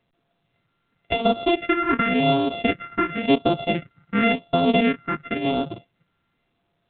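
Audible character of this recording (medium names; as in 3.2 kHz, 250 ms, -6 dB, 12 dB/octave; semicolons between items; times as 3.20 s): a buzz of ramps at a fixed pitch in blocks of 64 samples; phasing stages 4, 0.93 Hz, lowest notch 610–1900 Hz; A-law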